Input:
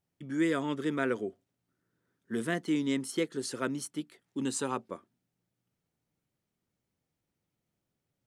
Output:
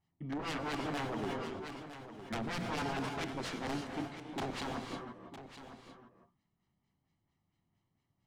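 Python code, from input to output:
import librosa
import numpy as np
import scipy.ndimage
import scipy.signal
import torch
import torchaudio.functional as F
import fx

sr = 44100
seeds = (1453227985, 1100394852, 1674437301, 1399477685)

y = scipy.signal.sosfilt(scipy.signal.butter(4, 9100.0, 'lowpass', fs=sr, output='sos'), x)
y = fx.high_shelf(y, sr, hz=5200.0, db=9.0)
y = fx.hum_notches(y, sr, base_hz=60, count=5)
y = y + 0.65 * np.pad(y, (int(1.0 * sr / 1000.0), 0))[:len(y)]
y = (np.mod(10.0 ** (28.0 / 20.0) * y + 1.0, 2.0) - 1.0) / 10.0 ** (28.0 / 20.0)
y = fx.filter_lfo_lowpass(y, sr, shape='sine', hz=4.4, low_hz=650.0, high_hz=3900.0, q=0.82)
y = 10.0 ** (-34.5 / 20.0) * np.tanh(y / 10.0 ** (-34.5 / 20.0))
y = y + 10.0 ** (-12.0 / 20.0) * np.pad(y, (int(958 * sr / 1000.0), 0))[:len(y)]
y = fx.rev_gated(y, sr, seeds[0], gate_ms=370, shape='rising', drr_db=4.0)
y = fx.sustainer(y, sr, db_per_s=21.0, at=(1.08, 3.09))
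y = F.gain(torch.from_numpy(y), 1.0).numpy()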